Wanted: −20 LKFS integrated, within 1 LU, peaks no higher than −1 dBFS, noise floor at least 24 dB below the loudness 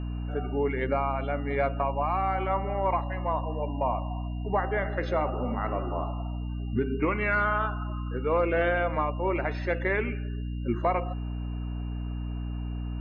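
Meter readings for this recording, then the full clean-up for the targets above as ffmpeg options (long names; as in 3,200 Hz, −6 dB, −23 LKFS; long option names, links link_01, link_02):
mains hum 60 Hz; hum harmonics up to 300 Hz; level of the hum −30 dBFS; interfering tone 2,800 Hz; level of the tone −55 dBFS; integrated loudness −29.5 LKFS; sample peak −14.0 dBFS; target loudness −20.0 LKFS
→ -af "bandreject=frequency=60:width_type=h:width=6,bandreject=frequency=120:width_type=h:width=6,bandreject=frequency=180:width_type=h:width=6,bandreject=frequency=240:width_type=h:width=6,bandreject=frequency=300:width_type=h:width=6"
-af "bandreject=frequency=2800:width=30"
-af "volume=9.5dB"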